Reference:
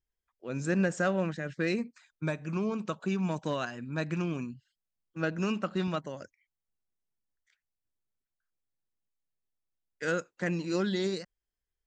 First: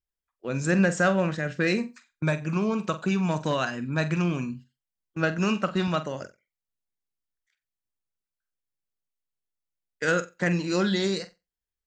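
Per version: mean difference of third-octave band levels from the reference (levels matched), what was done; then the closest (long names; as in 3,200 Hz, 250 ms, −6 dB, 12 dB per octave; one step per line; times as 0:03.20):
2.0 dB: noise gate −51 dBFS, range −12 dB
dynamic equaliser 330 Hz, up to −4 dB, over −38 dBFS, Q 0.92
on a send: flutter between parallel walls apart 7.8 metres, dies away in 0.23 s
on the sum: level +7.5 dB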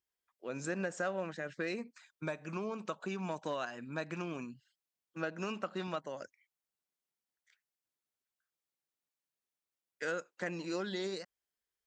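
3.5 dB: high-pass filter 380 Hz 6 dB per octave
dynamic equaliser 730 Hz, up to +4 dB, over −45 dBFS, Q 0.85
downward compressor 2 to 1, threshold −40 dBFS, peak gain reduction 9.5 dB
level +1 dB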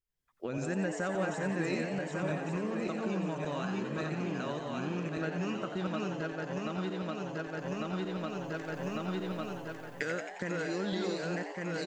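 7.5 dB: feedback delay that plays each chunk backwards 575 ms, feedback 51%, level −1.5 dB
camcorder AGC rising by 38 dB per second
echo with shifted repeats 89 ms, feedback 63%, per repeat +120 Hz, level −8 dB
level −6.5 dB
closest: first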